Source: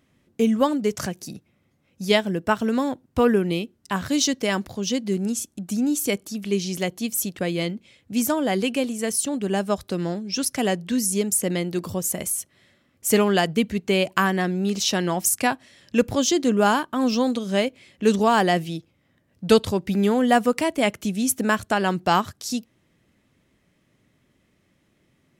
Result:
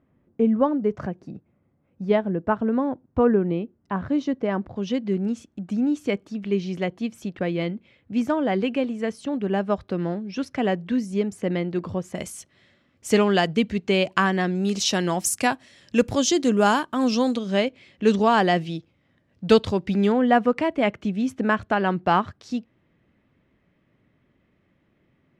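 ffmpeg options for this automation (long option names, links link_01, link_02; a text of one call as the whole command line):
ffmpeg -i in.wav -af "asetnsamples=nb_out_samples=441:pad=0,asendcmd='4.76 lowpass f 2300;12.15 lowpass f 5200;14.55 lowpass f 9100;17.36 lowpass f 4600;20.12 lowpass f 2400',lowpass=1200" out.wav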